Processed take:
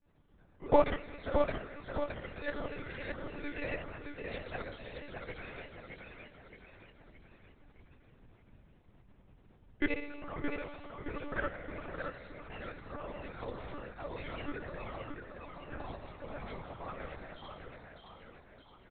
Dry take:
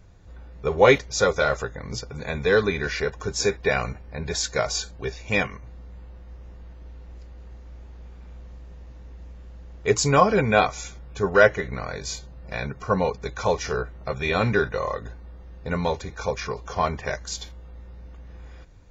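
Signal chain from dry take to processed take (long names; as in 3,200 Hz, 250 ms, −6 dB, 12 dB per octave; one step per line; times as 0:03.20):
peak hold with a decay on every bin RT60 0.68 s
low-shelf EQ 81 Hz −5.5 dB
four-comb reverb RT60 0.77 s, combs from 30 ms, DRR 14 dB
downward compressor 10 to 1, threshold −20 dBFS, peak gain reduction 13 dB
tuned comb filter 190 Hz, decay 0.95 s, mix 80%
noise gate −32 dBFS, range −20 dB
granular cloud, pitch spread up and down by 3 semitones
repeating echo 618 ms, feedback 46%, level −5 dB
one-pitch LPC vocoder at 8 kHz 290 Hz
level +16 dB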